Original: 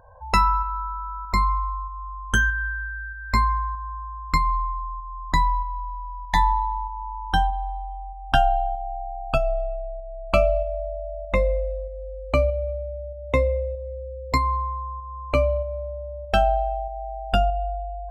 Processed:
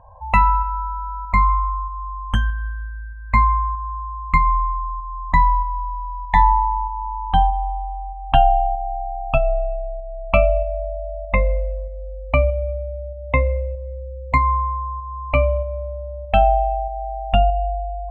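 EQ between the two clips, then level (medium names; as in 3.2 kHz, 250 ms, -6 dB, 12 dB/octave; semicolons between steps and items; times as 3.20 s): low-pass 7.6 kHz 12 dB/octave; resonant high shelf 3 kHz -8.5 dB, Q 1.5; static phaser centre 1.5 kHz, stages 6; +5.5 dB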